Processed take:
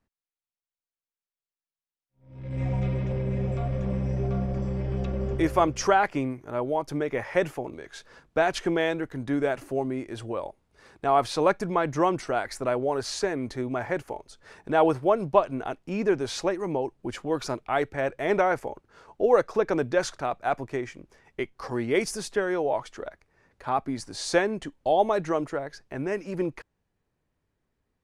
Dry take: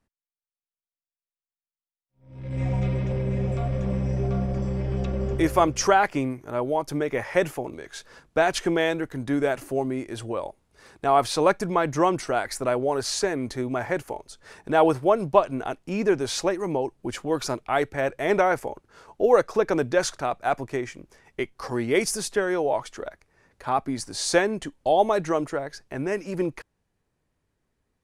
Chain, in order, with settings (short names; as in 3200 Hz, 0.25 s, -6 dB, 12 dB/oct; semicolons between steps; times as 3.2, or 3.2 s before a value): high shelf 7000 Hz -9 dB; gain -2 dB